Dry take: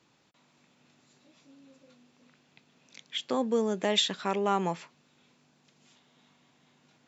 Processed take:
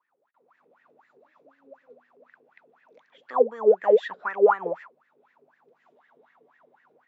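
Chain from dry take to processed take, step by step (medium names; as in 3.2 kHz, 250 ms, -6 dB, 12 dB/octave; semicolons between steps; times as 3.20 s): tilt shelf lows +4 dB, about 1.4 kHz; level rider gain up to 14.5 dB; wah-wah 4 Hz 410–1900 Hz, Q 18; trim +6.5 dB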